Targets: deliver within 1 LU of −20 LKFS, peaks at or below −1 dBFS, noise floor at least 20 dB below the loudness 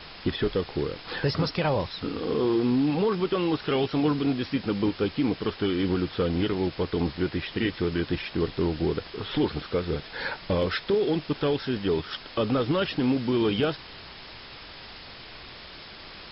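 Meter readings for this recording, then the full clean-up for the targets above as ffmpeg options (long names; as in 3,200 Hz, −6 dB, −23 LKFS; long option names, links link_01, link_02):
background noise floor −44 dBFS; target noise floor −47 dBFS; integrated loudness −27.0 LKFS; sample peak −14.0 dBFS; target loudness −20.0 LKFS
→ -af "afftdn=noise_reduction=6:noise_floor=-44"
-af "volume=7dB"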